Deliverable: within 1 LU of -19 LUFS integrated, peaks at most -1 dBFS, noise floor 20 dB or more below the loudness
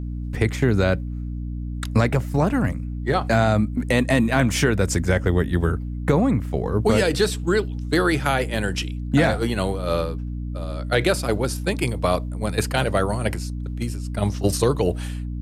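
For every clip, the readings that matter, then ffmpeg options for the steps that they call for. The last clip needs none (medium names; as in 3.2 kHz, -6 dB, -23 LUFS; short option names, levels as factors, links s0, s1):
hum 60 Hz; highest harmonic 300 Hz; hum level -26 dBFS; loudness -22.5 LUFS; peak level -6.0 dBFS; loudness target -19.0 LUFS
-> -af "bandreject=f=60:t=h:w=6,bandreject=f=120:t=h:w=6,bandreject=f=180:t=h:w=6,bandreject=f=240:t=h:w=6,bandreject=f=300:t=h:w=6"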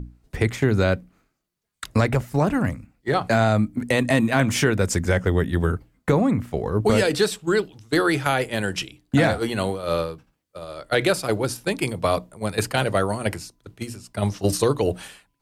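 hum not found; loudness -22.5 LUFS; peak level -7.0 dBFS; loudness target -19.0 LUFS
-> -af "volume=1.5"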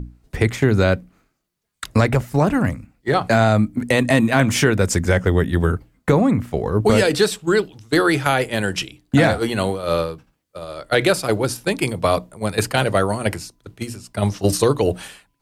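loudness -19.0 LUFS; peak level -3.5 dBFS; noise floor -71 dBFS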